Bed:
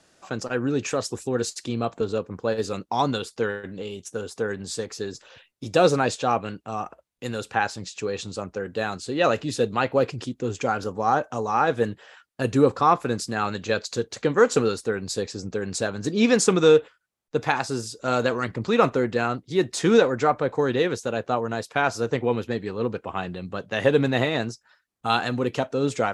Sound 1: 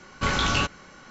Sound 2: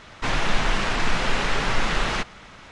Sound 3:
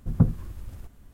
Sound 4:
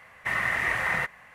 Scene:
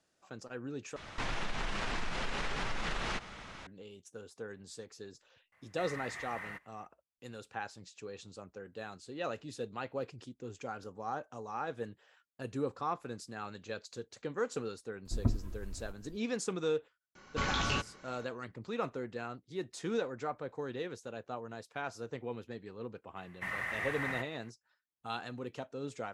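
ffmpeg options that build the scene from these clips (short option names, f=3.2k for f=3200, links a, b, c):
-filter_complex "[4:a]asplit=2[a][b];[0:a]volume=-17dB[c];[2:a]acompressor=threshold=-28dB:ratio=6:attack=3.2:release=140:knee=1:detection=peak[d];[3:a]aecho=1:1:3.1:0.82[e];[1:a]aresample=16000,aresample=44100[f];[c]asplit=2[g][h];[g]atrim=end=0.964[i];[d]atrim=end=2.71,asetpts=PTS-STARTPTS,volume=-3.5dB[j];[h]atrim=start=3.666[k];[a]atrim=end=1.34,asetpts=PTS-STARTPTS,volume=-18dB,afade=t=in:d=0.004:c=hsin,afade=t=out:st=1.336:d=0.004:c=hsin,adelay=5520[l];[e]atrim=end=1.13,asetpts=PTS-STARTPTS,volume=-9dB,afade=t=in:d=0.004:c=hsin,afade=t=out:st=1.126:d=0.004:c=hsin,adelay=15050[m];[f]atrim=end=1.1,asetpts=PTS-STARTPTS,volume=-9dB,afade=t=in:d=0.004:c=hsin,afade=t=out:st=1.096:d=0.004:c=hsin,adelay=17150[n];[b]atrim=end=1.34,asetpts=PTS-STARTPTS,volume=-11dB,afade=t=in:d=0.004:c=hsin,afade=t=out:st=1.336:d=0.004:c=hsin,adelay=23160[o];[i][j]acrossfade=d=0.004:c1=hsin:c2=hsin[p];[p][k]acrossfade=d=0.004:c1=hsin:c2=hsin[q];[q][l][m][n][o]amix=inputs=5:normalize=0"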